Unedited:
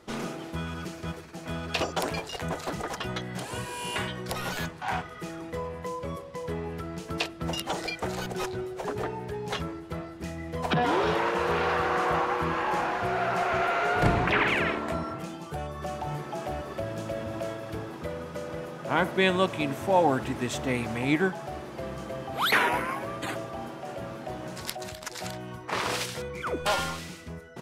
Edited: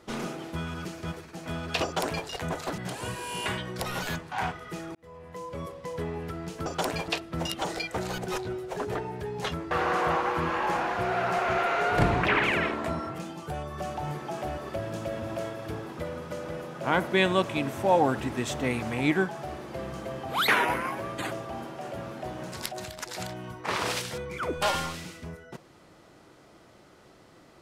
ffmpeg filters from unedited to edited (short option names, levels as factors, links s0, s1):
-filter_complex "[0:a]asplit=6[s0][s1][s2][s3][s4][s5];[s0]atrim=end=2.782[s6];[s1]atrim=start=3.278:end=5.45,asetpts=PTS-STARTPTS,afade=t=out:st=2.168:d=0.004:c=hsin[s7];[s2]atrim=start=5.45:end=7.162,asetpts=PTS-STARTPTS,afade=t=in:d=0.78[s8];[s3]atrim=start=1.838:end=2.262[s9];[s4]atrim=start=7.158:end=9.792[s10];[s5]atrim=start=11.748[s11];[s7][s8]concat=n=2:v=0:a=1[s12];[s6][s12]acrossfade=d=0.004:c1=hsin:c2=hsin[s13];[s13][s9]acrossfade=d=0.004:c1=hsin:c2=hsin[s14];[s14][s10]acrossfade=d=0.004:c1=hsin:c2=hsin[s15];[s15][s11]acrossfade=d=0.004:c1=hsin:c2=hsin"